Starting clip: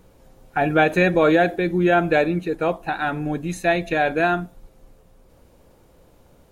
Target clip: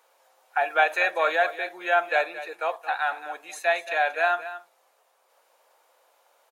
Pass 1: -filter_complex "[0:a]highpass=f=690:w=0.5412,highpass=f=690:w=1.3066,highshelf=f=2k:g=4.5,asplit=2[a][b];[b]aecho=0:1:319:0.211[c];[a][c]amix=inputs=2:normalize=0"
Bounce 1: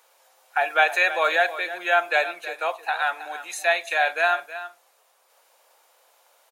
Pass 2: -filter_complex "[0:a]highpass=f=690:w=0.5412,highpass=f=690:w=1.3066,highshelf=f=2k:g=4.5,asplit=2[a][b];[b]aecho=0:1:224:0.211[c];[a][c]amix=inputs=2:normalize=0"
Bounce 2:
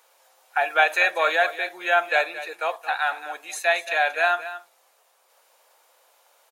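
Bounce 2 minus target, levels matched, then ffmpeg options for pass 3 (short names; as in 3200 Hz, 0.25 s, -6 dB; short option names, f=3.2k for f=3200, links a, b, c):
4000 Hz band +3.5 dB
-filter_complex "[0:a]highpass=f=690:w=0.5412,highpass=f=690:w=1.3066,highshelf=f=2k:g=-3,asplit=2[a][b];[b]aecho=0:1:224:0.211[c];[a][c]amix=inputs=2:normalize=0"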